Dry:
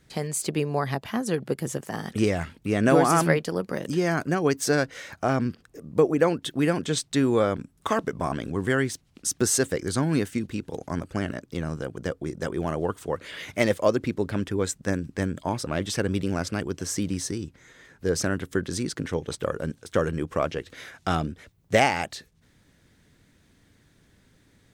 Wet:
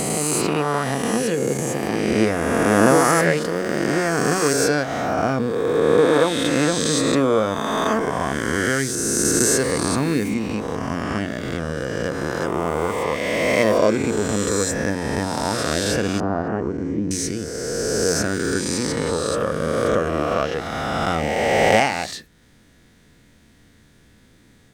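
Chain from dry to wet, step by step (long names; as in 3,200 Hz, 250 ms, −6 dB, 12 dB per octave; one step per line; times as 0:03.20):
peak hold with a rise ahead of every peak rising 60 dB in 2.57 s
convolution reverb RT60 0.20 s, pre-delay 4 ms, DRR 12 dB
in parallel at −3 dB: downward compressor, threshold −27 dBFS, peak gain reduction 16.5 dB
0:16.20–0:17.11: on the sum: low-pass with resonance 910 Hz, resonance Q 1.7
level −1.5 dB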